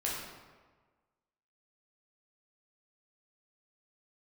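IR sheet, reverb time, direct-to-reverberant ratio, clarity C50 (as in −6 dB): 1.4 s, −5.5 dB, 0.5 dB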